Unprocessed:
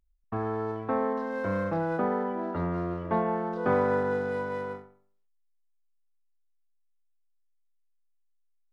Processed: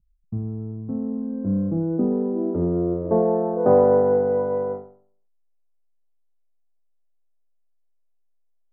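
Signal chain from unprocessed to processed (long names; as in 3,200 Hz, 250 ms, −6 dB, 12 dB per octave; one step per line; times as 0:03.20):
low-pass filter sweep 170 Hz → 640 Hz, 0:00.74–0:03.66
level +5 dB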